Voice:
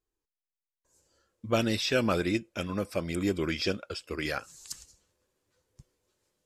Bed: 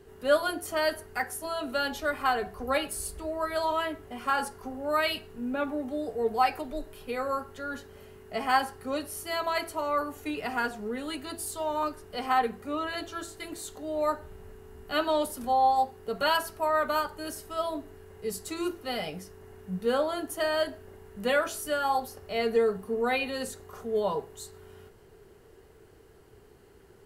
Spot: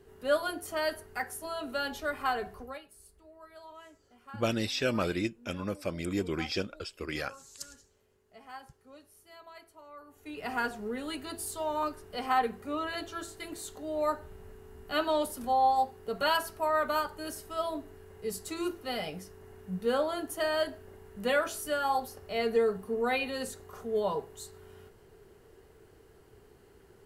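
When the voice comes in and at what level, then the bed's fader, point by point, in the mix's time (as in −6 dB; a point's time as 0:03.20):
2.90 s, −3.0 dB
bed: 0:02.56 −4 dB
0:02.83 −21.5 dB
0:10.00 −21.5 dB
0:10.50 −2 dB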